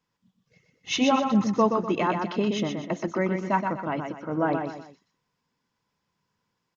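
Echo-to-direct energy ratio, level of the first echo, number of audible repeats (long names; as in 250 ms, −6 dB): −5.0 dB, −5.5 dB, 3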